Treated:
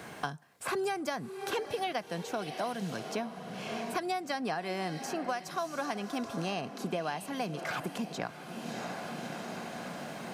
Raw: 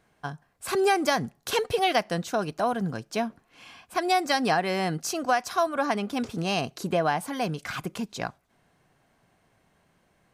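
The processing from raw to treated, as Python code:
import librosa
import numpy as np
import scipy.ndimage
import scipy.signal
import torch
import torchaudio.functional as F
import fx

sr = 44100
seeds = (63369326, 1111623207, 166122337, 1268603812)

y = scipy.signal.sosfilt(scipy.signal.butter(2, 110.0, 'highpass', fs=sr, output='sos'), x)
y = fx.echo_diffused(y, sr, ms=638, feedback_pct=40, wet_db=-13.0)
y = fx.band_squash(y, sr, depth_pct=100)
y = y * 10.0 ** (-9.0 / 20.0)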